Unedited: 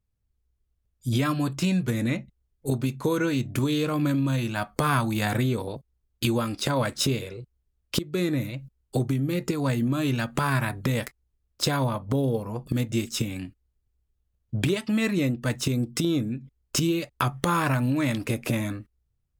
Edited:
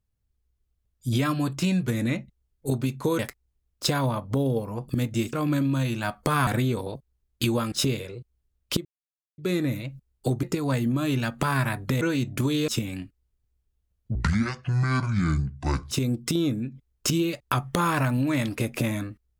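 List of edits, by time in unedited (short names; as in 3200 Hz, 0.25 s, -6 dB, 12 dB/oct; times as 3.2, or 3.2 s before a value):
3.19–3.86 swap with 10.97–13.11
5–5.28 cut
6.53–6.94 cut
8.07 insert silence 0.53 s
9.12–9.39 cut
14.58–15.6 speed 58%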